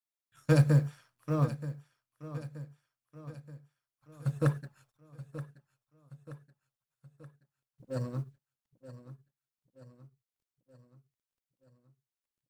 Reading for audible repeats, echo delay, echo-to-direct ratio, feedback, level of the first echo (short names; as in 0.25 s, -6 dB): 4, 0.927 s, -12.5 dB, 53%, -14.0 dB